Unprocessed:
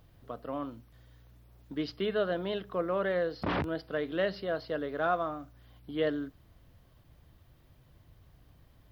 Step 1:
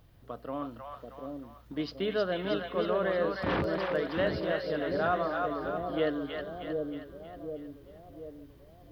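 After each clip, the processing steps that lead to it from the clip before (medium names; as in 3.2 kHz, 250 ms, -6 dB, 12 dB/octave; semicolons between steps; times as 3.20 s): two-band feedback delay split 640 Hz, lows 735 ms, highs 315 ms, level -3 dB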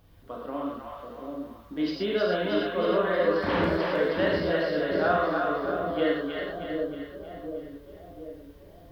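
peaking EQ 120 Hz -9 dB 0.3 oct; gated-style reverb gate 150 ms flat, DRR -3 dB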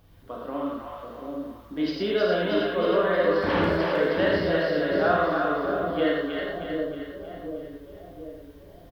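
delay 80 ms -8 dB; trim +1.5 dB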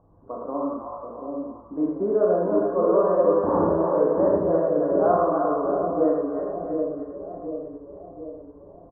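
elliptic low-pass 1.1 kHz, stop band 60 dB; bass shelf 140 Hz -10.5 dB; trim +4.5 dB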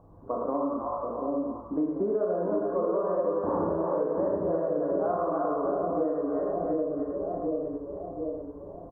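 compression 6:1, threshold -29 dBFS, peak gain reduction 14 dB; trim +4 dB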